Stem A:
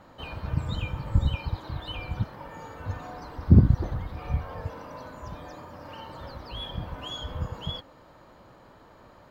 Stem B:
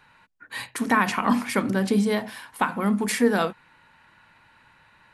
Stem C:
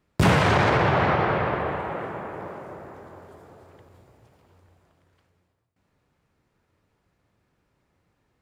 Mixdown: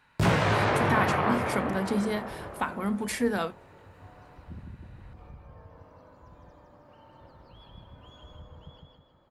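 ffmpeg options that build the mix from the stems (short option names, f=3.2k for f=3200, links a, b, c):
-filter_complex "[0:a]highshelf=f=2.1k:g=-10,acompressor=threshold=-31dB:ratio=4,adelay=1000,volume=-13dB,asplit=2[a][b];[b]volume=-3dB[c];[1:a]volume=-6.5dB,asplit=2[d][e];[2:a]flanger=delay=17.5:depth=5.1:speed=0.33,volume=-2dB[f];[e]apad=whole_len=454451[g];[a][g]sidechaincompress=threshold=-45dB:ratio=8:attack=16:release=456[h];[c]aecho=0:1:158|316|474|632|790|948:1|0.4|0.16|0.064|0.0256|0.0102[i];[h][d][f][i]amix=inputs=4:normalize=0"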